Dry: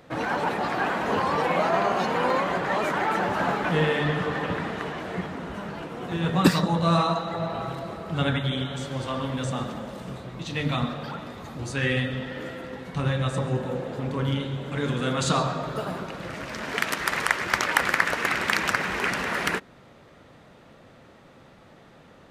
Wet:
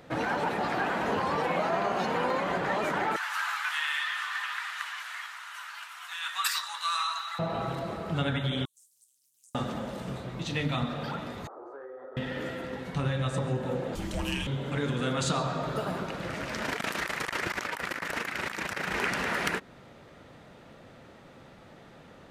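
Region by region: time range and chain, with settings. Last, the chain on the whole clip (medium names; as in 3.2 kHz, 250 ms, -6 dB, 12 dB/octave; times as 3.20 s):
3.16–7.39 s: steep high-pass 1.1 kHz + treble shelf 6.1 kHz +10 dB
8.65–9.55 s: inverse Chebyshev high-pass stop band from 2.5 kHz, stop band 70 dB + compression 4:1, threshold -54 dBFS + loudspeaker Doppler distortion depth 0.54 ms
11.47–12.17 s: elliptic band-pass 370–1300 Hz + compression 8:1, threshold -40 dBFS
13.95–14.47 s: tone controls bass -11 dB, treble +14 dB + frequency shift -460 Hz
16.62–18.94 s: treble shelf 9.3 kHz +4.5 dB + compressor with a negative ratio -31 dBFS + AM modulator 27 Hz, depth 45%
whole clip: band-stop 1.1 kHz, Q 25; compression 2.5:1, threshold -27 dBFS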